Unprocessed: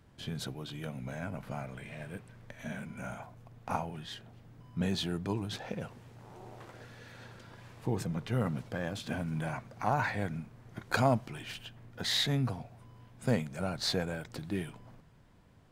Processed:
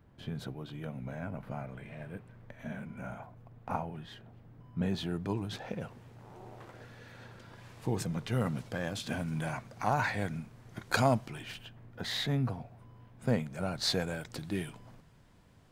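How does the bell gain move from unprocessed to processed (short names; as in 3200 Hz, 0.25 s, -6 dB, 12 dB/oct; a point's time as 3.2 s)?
bell 7600 Hz 2.6 oct
4.79 s -11.5 dB
5.33 s -3.5 dB
7.33 s -3.5 dB
7.85 s +4.5 dB
11.12 s +4.5 dB
11.77 s -7.5 dB
13.26 s -7.5 dB
14 s +4 dB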